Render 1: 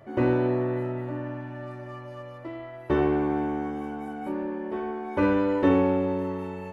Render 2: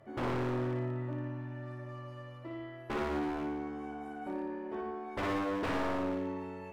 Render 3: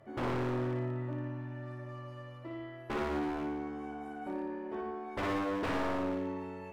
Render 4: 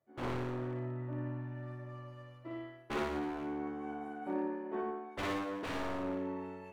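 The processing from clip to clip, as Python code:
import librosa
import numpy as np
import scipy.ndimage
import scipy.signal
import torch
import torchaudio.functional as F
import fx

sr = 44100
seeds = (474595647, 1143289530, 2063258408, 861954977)

y1 = fx.env_lowpass_down(x, sr, base_hz=2800.0, full_db=-18.5)
y1 = 10.0 ** (-22.0 / 20.0) * (np.abs((y1 / 10.0 ** (-22.0 / 20.0) + 3.0) % 4.0 - 2.0) - 1.0)
y1 = fx.room_flutter(y1, sr, wall_m=9.8, rt60_s=0.63)
y1 = F.gain(torch.from_numpy(y1), -7.5).numpy()
y2 = y1
y3 = fx.notch(y2, sr, hz=5100.0, q=21.0)
y3 = fx.rider(y3, sr, range_db=4, speed_s=0.5)
y3 = fx.band_widen(y3, sr, depth_pct=100)
y3 = F.gain(torch.from_numpy(y3), -1.5).numpy()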